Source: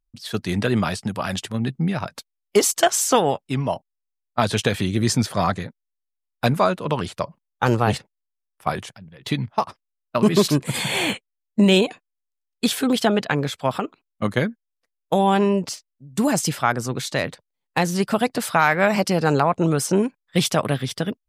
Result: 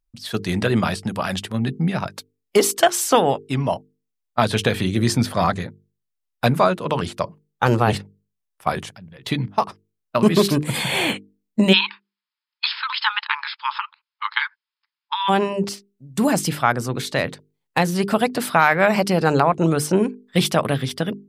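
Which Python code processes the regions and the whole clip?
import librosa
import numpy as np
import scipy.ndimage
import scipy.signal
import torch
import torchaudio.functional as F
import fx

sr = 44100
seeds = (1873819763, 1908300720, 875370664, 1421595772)

y = fx.spec_clip(x, sr, under_db=13, at=(11.72, 15.28), fade=0.02)
y = fx.brickwall_bandpass(y, sr, low_hz=840.0, high_hz=5300.0, at=(11.72, 15.28), fade=0.02)
y = fx.hum_notches(y, sr, base_hz=50, count=9)
y = fx.dynamic_eq(y, sr, hz=6700.0, q=1.7, threshold_db=-41.0, ratio=4.0, max_db=-6)
y = F.gain(torch.from_numpy(y), 2.0).numpy()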